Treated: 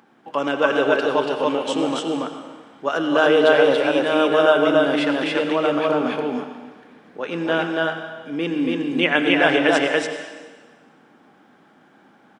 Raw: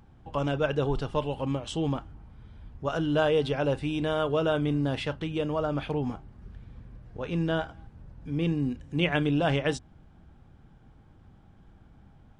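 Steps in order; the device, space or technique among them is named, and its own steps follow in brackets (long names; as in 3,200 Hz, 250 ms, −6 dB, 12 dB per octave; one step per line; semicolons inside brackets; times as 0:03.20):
stadium PA (high-pass filter 240 Hz 24 dB per octave; parametric band 1,700 Hz +5 dB 1 octave; loudspeakers that aren't time-aligned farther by 86 metres −12 dB, 97 metres −1 dB; convolution reverb RT60 1.4 s, pre-delay 79 ms, DRR 7.5 dB)
level +6.5 dB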